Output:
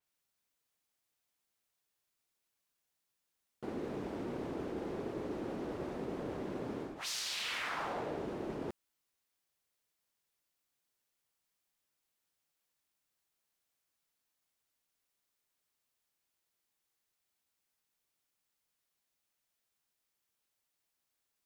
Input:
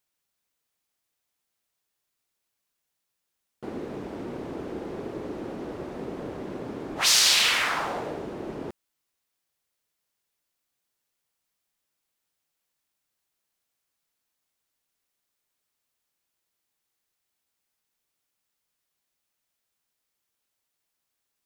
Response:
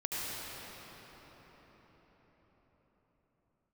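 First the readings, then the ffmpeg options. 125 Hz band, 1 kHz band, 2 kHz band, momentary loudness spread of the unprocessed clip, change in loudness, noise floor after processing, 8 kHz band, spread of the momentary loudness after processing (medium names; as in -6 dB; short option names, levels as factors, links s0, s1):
-5.0 dB, -9.5 dB, -14.5 dB, 19 LU, -14.0 dB, -85 dBFS, -19.5 dB, 6 LU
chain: -af "areverse,acompressor=threshold=0.0282:ratio=20,areverse,adynamicequalizer=threshold=0.00316:dfrequency=4900:dqfactor=0.7:tfrequency=4900:tqfactor=0.7:attack=5:release=100:ratio=0.375:range=2.5:mode=cutabove:tftype=highshelf,volume=0.668"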